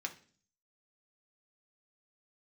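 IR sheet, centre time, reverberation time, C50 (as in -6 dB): 7 ms, 0.45 s, 14.0 dB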